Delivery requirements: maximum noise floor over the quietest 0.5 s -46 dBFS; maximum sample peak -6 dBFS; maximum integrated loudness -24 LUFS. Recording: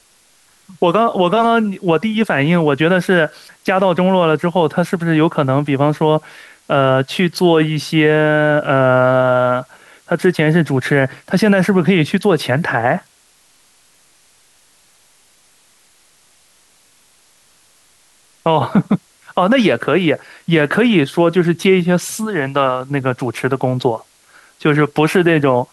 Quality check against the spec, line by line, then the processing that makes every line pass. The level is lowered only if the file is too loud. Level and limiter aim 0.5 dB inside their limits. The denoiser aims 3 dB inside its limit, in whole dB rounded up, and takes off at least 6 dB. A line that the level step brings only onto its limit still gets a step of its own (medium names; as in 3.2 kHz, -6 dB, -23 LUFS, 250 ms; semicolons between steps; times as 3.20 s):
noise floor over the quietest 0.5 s -53 dBFS: pass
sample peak -3.0 dBFS: fail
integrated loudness -15.0 LUFS: fail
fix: trim -9.5 dB